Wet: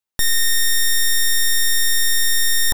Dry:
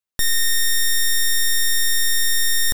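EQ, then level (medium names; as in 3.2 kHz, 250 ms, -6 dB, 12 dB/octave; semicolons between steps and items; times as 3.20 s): peaking EQ 870 Hz +6 dB 0.2 oct; +1.5 dB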